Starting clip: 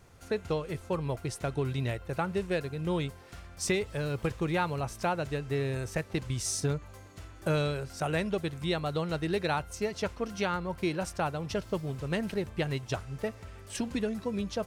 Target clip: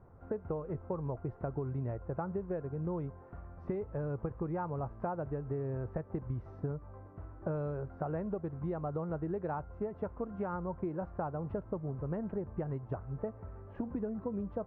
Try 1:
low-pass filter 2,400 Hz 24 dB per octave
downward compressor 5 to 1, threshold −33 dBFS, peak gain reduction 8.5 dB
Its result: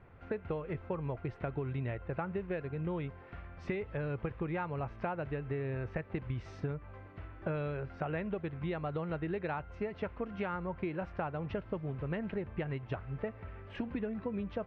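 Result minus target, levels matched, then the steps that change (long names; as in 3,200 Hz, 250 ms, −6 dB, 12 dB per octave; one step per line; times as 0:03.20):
2,000 Hz band +10.5 dB
change: low-pass filter 1,200 Hz 24 dB per octave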